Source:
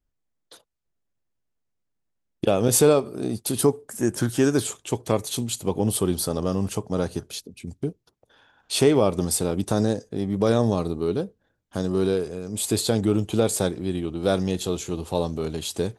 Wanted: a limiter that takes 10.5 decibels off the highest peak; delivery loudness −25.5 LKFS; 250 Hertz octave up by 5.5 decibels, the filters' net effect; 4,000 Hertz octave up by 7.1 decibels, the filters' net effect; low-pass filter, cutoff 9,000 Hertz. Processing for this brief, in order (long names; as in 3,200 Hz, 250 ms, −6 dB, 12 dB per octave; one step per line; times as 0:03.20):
low-pass filter 9,000 Hz
parametric band 250 Hz +7 dB
parametric band 4,000 Hz +8.5 dB
level −0.5 dB
brickwall limiter −13.5 dBFS